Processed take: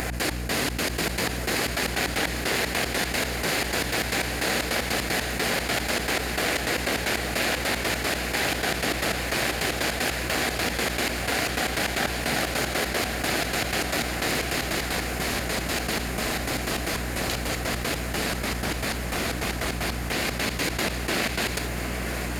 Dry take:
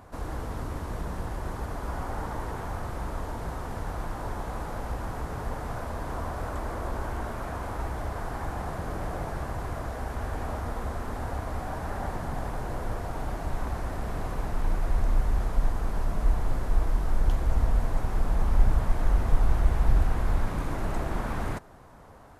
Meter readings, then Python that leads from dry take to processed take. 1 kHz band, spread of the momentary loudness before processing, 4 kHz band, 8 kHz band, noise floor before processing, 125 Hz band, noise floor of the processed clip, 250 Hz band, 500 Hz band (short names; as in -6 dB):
+4.5 dB, 9 LU, +23.0 dB, n/a, -37 dBFS, -2.0 dB, -31 dBFS, +7.0 dB, +7.5 dB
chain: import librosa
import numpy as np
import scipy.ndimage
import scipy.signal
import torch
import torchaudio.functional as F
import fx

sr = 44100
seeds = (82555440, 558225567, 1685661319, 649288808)

y = fx.lower_of_two(x, sr, delay_ms=0.42)
y = fx.step_gate(y, sr, bpm=153, pattern='x.x..xx.x.', floor_db=-24.0, edge_ms=4.5)
y = fx.rider(y, sr, range_db=5, speed_s=0.5)
y = scipy.signal.sosfilt(scipy.signal.butter(2, 230.0, 'highpass', fs=sr, output='sos'), y)
y = fx.high_shelf(y, sr, hz=2400.0, db=10.0)
y = fx.echo_diffused(y, sr, ms=846, feedback_pct=77, wet_db=-15.5)
y = fx.dynamic_eq(y, sr, hz=3900.0, q=1.1, threshold_db=-53.0, ratio=4.0, max_db=6)
y = fx.notch(y, sr, hz=910.0, q=18.0)
y = fx.add_hum(y, sr, base_hz=60, snr_db=14)
y = fx.env_flatten(y, sr, amount_pct=70)
y = y * 10.0 ** (6.0 / 20.0)